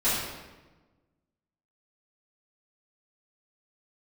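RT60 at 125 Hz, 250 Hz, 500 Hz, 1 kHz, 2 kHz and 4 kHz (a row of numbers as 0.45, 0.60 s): 1.6, 1.6, 1.3, 1.1, 1.0, 0.85 s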